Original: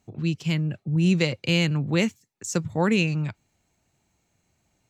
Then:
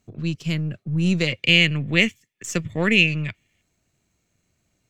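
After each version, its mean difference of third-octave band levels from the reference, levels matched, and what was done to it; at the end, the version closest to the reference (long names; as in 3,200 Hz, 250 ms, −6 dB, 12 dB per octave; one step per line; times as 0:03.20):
2.5 dB: gain on one half-wave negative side −3 dB
gain on a spectral selection 0:01.27–0:03.62, 1,700–3,600 Hz +10 dB
parametric band 840 Hz −10 dB 0.37 octaves
level +1.5 dB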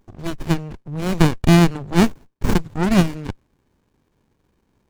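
7.0 dB: high-pass filter 500 Hz 6 dB per octave
parametric band 6,400 Hz +12 dB 1.2 octaves
windowed peak hold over 65 samples
level +8 dB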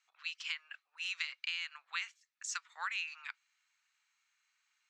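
15.5 dB: Butterworth high-pass 1,200 Hz 36 dB per octave
high-frequency loss of the air 110 metres
downward compressor 12 to 1, threshold −35 dBFS, peak gain reduction 12 dB
level +1 dB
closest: first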